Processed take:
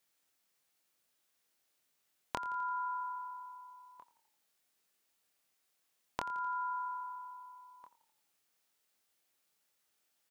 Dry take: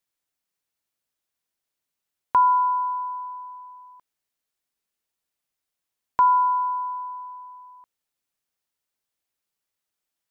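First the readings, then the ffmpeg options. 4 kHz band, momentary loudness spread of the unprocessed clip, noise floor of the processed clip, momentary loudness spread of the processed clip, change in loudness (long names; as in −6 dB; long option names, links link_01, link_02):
can't be measured, 20 LU, −79 dBFS, 18 LU, −17.5 dB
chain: -filter_complex "[0:a]highpass=frequency=180:poles=1,bandreject=frequency=1000:width=19,acompressor=threshold=-41dB:ratio=12,asplit=2[link_01][link_02];[link_02]adelay=25,volume=-5dB[link_03];[link_01][link_03]amix=inputs=2:normalize=0,asplit=6[link_04][link_05][link_06][link_07][link_08][link_09];[link_05]adelay=85,afreqshift=-33,volume=-17dB[link_10];[link_06]adelay=170,afreqshift=-66,volume=-22.4dB[link_11];[link_07]adelay=255,afreqshift=-99,volume=-27.7dB[link_12];[link_08]adelay=340,afreqshift=-132,volume=-33.1dB[link_13];[link_09]adelay=425,afreqshift=-165,volume=-38.4dB[link_14];[link_04][link_10][link_11][link_12][link_13][link_14]amix=inputs=6:normalize=0,volume=4.5dB"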